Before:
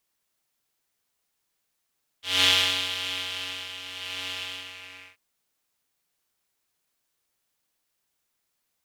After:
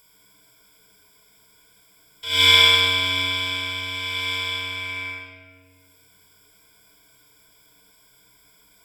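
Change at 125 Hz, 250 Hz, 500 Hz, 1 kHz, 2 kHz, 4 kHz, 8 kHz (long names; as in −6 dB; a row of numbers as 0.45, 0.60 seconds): +13.0, +6.0, +8.0, +9.5, +9.5, +7.5, +2.0 decibels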